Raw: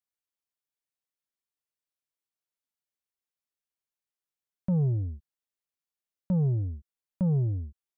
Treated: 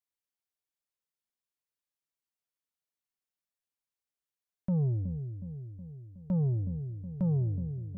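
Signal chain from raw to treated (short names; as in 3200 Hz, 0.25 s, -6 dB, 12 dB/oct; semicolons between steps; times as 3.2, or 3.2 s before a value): dark delay 0.368 s, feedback 60%, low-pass 420 Hz, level -9 dB; gain -3 dB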